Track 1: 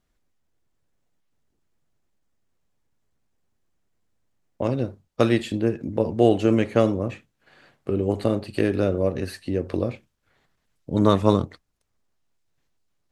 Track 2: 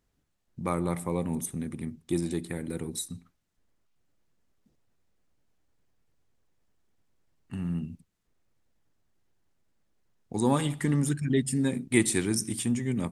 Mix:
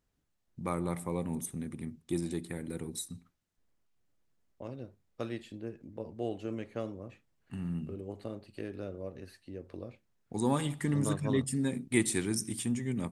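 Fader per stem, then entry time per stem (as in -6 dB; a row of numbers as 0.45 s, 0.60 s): -18.5 dB, -4.5 dB; 0.00 s, 0.00 s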